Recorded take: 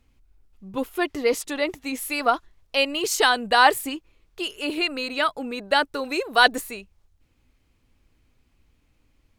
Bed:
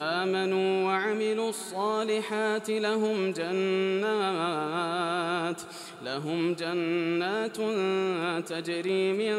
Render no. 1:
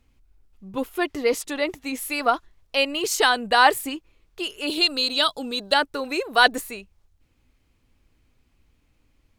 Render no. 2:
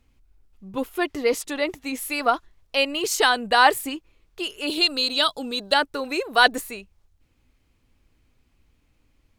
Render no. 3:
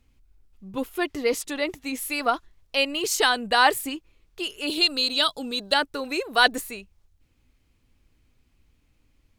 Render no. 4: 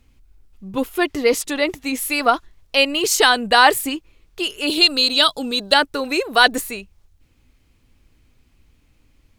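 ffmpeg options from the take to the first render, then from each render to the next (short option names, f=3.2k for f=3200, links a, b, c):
-filter_complex "[0:a]asettb=1/sr,asplit=3[a][b][c];[a]atrim=end=4.674[d];[b]atrim=start=4.67:end=5.74,asetpts=PTS-STARTPTS,afade=t=in:d=0.004:c=qsin,afade=t=out:st=1.066:d=0.004:c=qsin,highshelf=f=2.8k:t=q:w=3:g=7[e];[c]atrim=start=5.736[f];[d][e]acrossfade=d=0.004:c1=hsin:c2=qsin[g];[g][f]acrossfade=d=0.004:c1=qsin:c2=hsin"
-af anull
-af "equalizer=f=810:w=0.5:g=-3"
-af "volume=7dB,alimiter=limit=-1dB:level=0:latency=1"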